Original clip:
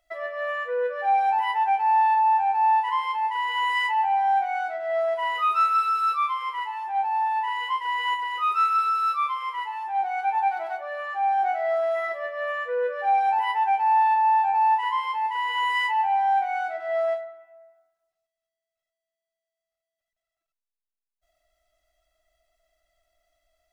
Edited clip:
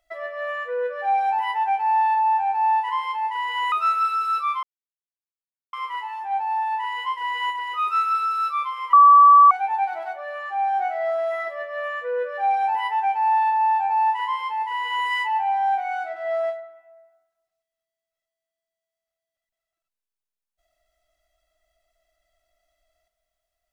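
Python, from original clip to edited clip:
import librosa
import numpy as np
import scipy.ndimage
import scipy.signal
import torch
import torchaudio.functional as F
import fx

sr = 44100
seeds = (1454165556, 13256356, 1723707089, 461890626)

y = fx.edit(x, sr, fx.cut(start_s=3.72, length_s=1.74),
    fx.insert_silence(at_s=6.37, length_s=1.1),
    fx.bleep(start_s=9.57, length_s=0.58, hz=1150.0, db=-7.5), tone=tone)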